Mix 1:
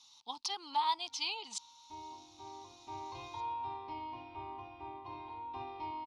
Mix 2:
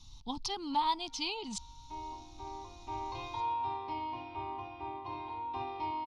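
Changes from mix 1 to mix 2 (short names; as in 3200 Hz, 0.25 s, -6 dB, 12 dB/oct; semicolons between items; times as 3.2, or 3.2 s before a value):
speech: remove HPF 720 Hz 12 dB/oct; background +5.0 dB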